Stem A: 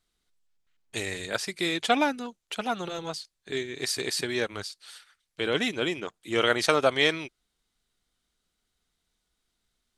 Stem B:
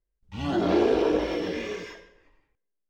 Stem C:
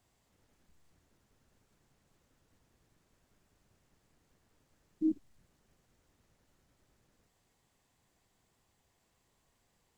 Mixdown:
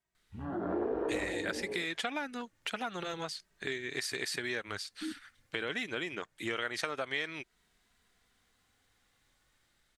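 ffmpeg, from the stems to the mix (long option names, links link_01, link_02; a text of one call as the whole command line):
ffmpeg -i stem1.wav -i stem2.wav -i stem3.wav -filter_complex "[0:a]acompressor=threshold=-29dB:ratio=2.5,adelay=150,volume=2.5dB[link_01];[1:a]acrossover=split=2600[link_02][link_03];[link_03]acompressor=threshold=-54dB:ratio=4:attack=1:release=60[link_04];[link_02][link_04]amix=inputs=2:normalize=0,afwtdn=0.0282,dynaudnorm=framelen=410:gausssize=3:maxgain=13dB,volume=-9.5dB[link_05];[2:a]dynaudnorm=framelen=220:gausssize=5:maxgain=12dB,asplit=2[link_06][link_07];[link_07]adelay=2.7,afreqshift=0.28[link_08];[link_06][link_08]amix=inputs=2:normalize=1,volume=-12dB[link_09];[link_01][link_05][link_09]amix=inputs=3:normalize=0,equalizer=frequency=1800:width_type=o:width=1:gain=8,acompressor=threshold=-40dB:ratio=2" out.wav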